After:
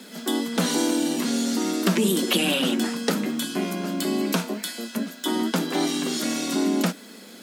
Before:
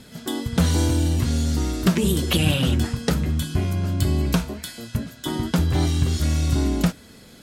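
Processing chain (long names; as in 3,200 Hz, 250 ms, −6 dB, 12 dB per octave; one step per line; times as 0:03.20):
Butterworth high-pass 190 Hz 72 dB per octave
in parallel at −0.5 dB: brickwall limiter −20 dBFS, peak gain reduction 11 dB
on the sum: bit-depth reduction 10 bits, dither triangular
level −2 dB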